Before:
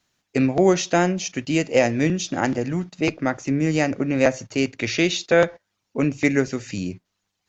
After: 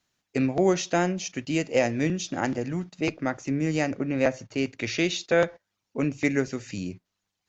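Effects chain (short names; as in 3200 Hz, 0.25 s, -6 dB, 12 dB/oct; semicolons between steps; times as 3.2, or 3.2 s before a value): 3.97–4.66 air absorption 70 m; gain -5 dB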